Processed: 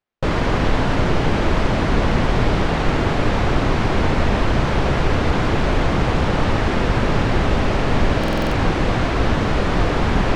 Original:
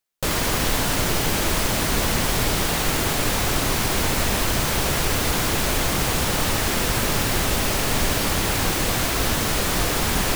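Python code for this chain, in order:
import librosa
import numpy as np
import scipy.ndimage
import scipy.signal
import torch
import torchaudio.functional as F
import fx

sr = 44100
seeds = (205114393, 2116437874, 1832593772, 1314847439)

y = fx.spacing_loss(x, sr, db_at_10k=33)
y = fx.buffer_glitch(y, sr, at_s=(8.19,), block=2048, repeats=6)
y = y * librosa.db_to_amplitude(7.0)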